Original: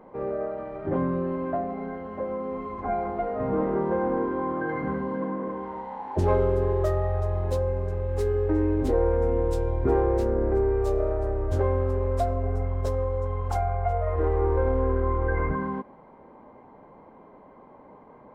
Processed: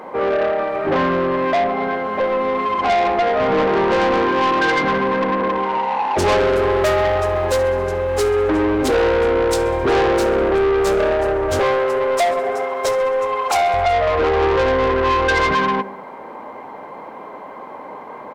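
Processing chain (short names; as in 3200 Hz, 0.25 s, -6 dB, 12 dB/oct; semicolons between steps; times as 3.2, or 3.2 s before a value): 11.59–13.74 HPF 330 Hz 24 dB/oct; feedback echo 66 ms, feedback 56%, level -17.5 dB; overdrive pedal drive 25 dB, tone 4100 Hz, clips at -9 dBFS; high shelf 3000 Hz +12 dB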